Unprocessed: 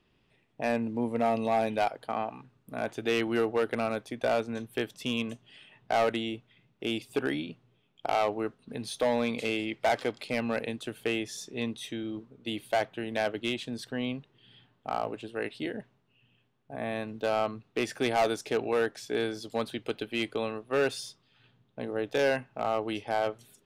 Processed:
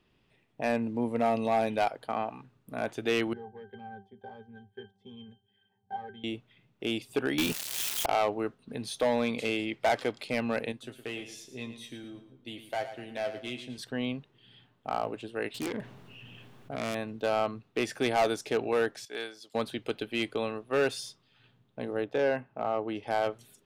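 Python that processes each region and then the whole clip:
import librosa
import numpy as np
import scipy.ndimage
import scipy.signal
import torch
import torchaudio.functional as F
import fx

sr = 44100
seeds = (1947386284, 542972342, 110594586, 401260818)

y = fx.chain(x, sr, fx.octave_resonator(note='G', decay_s=0.23),
    fx.bell_lfo(hz=1.2, low_hz=690.0, high_hz=2900.0, db=7), at=(3.33, 6.24))
y = fx.chain(y, sr, fx.crossing_spikes(level_db=-28.5),
    fx.peak_eq(hz=190.0, db=-9.0, octaves=2.5),
    fx.leveller(passes=5), at=(7.38, 8.06))
y = fx.chain(y, sr, fx.comb_fb(f0_hz=130.0, decay_s=0.16, harmonics='all', damping=0.0, mix_pct=80),
    fx.echo_feedback(ms=112, feedback_pct=33, wet_db=-11.0), at=(10.72, 13.78))
y = fx.chain(y, sr, fx.self_delay(depth_ms=0.43),
    fx.env_flatten(amount_pct=50), at=(15.54, 16.95))
y = fx.chain(y, sr, fx.highpass(hz=1100.0, slope=6),
    fx.high_shelf(hz=11000.0, db=-3.0),
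    fx.upward_expand(threshold_db=-48.0, expansion=1.5), at=(19.05, 19.55))
y = fx.chain(y, sr, fx.lowpass(hz=1400.0, slope=6),
    fx.low_shelf(hz=61.0, db=-11.5), at=(22.04, 23.03))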